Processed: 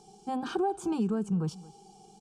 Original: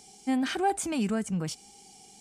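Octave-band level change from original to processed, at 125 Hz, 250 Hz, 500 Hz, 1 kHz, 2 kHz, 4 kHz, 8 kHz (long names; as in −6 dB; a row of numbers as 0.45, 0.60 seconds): +2.0, −1.5, +0.5, −3.5, −9.5, −8.5, −12.0 decibels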